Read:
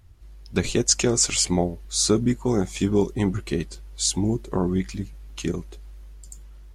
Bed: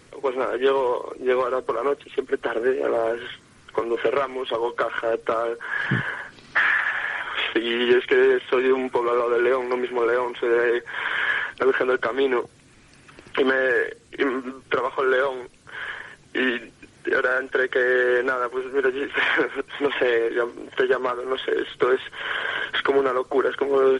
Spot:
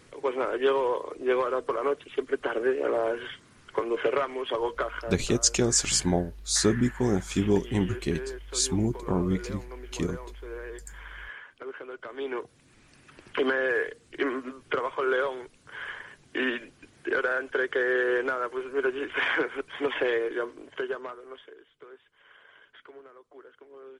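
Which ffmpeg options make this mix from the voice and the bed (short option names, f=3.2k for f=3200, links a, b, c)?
-filter_complex "[0:a]adelay=4550,volume=-3dB[a];[1:a]volume=10dB,afade=t=out:st=4.67:d=0.58:silence=0.16788,afade=t=in:st=11.98:d=0.83:silence=0.199526,afade=t=out:st=20.09:d=1.48:silence=0.0668344[b];[a][b]amix=inputs=2:normalize=0"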